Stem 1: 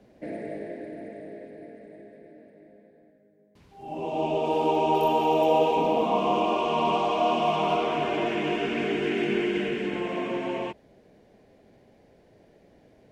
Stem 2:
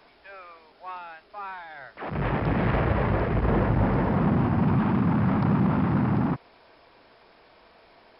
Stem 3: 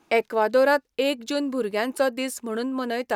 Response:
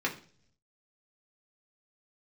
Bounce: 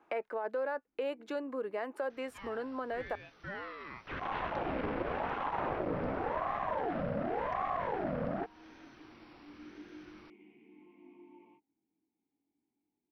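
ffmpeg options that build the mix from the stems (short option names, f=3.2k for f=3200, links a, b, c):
-filter_complex "[0:a]flanger=delay=18.5:depth=3.3:speed=0.31,asplit=3[a][b][c];[a]bandpass=f=300:t=q:w=8,volume=0dB[d];[b]bandpass=f=870:t=q:w=8,volume=-6dB[e];[c]bandpass=f=2.24k:t=q:w=8,volume=-9dB[f];[d][e][f]amix=inputs=3:normalize=0,lowshelf=f=150:g=10,adelay=850,volume=-16.5dB[g];[1:a]aeval=exprs='val(0)*sin(2*PI*650*n/s+650*0.45/0.9*sin(2*PI*0.9*n/s))':c=same,adelay=2100,volume=-1dB[h];[2:a]acrossover=split=380 2100:gain=0.224 1 0.0794[i][j][k];[i][j][k]amix=inputs=3:normalize=0,alimiter=limit=-18.5dB:level=0:latency=1:release=13,acontrast=75,volume=-8.5dB[l];[g][h][l]amix=inputs=3:normalize=0,acompressor=threshold=-38dB:ratio=2"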